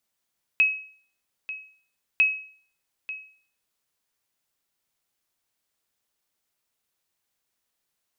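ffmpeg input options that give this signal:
-f lavfi -i "aevalsrc='0.237*(sin(2*PI*2560*mod(t,1.6))*exp(-6.91*mod(t,1.6)/0.49)+0.178*sin(2*PI*2560*max(mod(t,1.6)-0.89,0))*exp(-6.91*max(mod(t,1.6)-0.89,0)/0.49))':d=3.2:s=44100"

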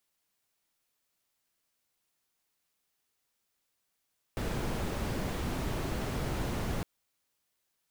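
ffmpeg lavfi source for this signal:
-f lavfi -i "anoisesrc=c=brown:a=0.105:d=2.46:r=44100:seed=1"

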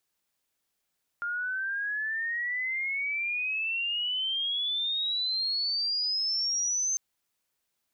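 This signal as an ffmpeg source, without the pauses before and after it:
-f lavfi -i "aevalsrc='pow(10,(-29+3.5*t/5.75)/20)*sin(2*PI*1400*5.75/log(6300/1400)*(exp(log(6300/1400)*t/5.75)-1))':d=5.75:s=44100"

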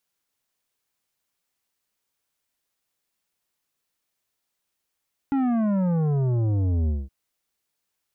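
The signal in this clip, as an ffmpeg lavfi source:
-f lavfi -i "aevalsrc='0.0891*clip((1.77-t)/0.21,0,1)*tanh(3.35*sin(2*PI*280*1.77/log(65/280)*(exp(log(65/280)*t/1.77)-1)))/tanh(3.35)':d=1.77:s=44100"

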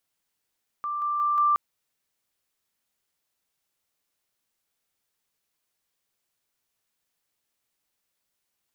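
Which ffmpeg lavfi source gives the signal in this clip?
-f lavfi -i "aevalsrc='pow(10,(-27+3*floor(t/0.18))/20)*sin(2*PI*1180*t)':d=0.72:s=44100"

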